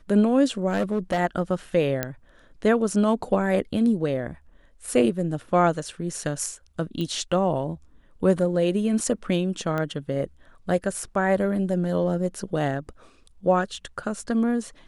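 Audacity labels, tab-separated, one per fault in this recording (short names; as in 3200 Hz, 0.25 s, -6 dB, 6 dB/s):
0.690000	1.200000	clipped -19 dBFS
2.030000	2.030000	pop -10 dBFS
7.010000	7.010000	pop -18 dBFS
9.780000	9.780000	pop -16 dBFS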